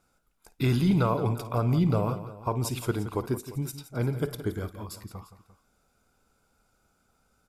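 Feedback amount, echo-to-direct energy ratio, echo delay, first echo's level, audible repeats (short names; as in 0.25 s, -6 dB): no steady repeat, -10.5 dB, 54 ms, -16.5 dB, 3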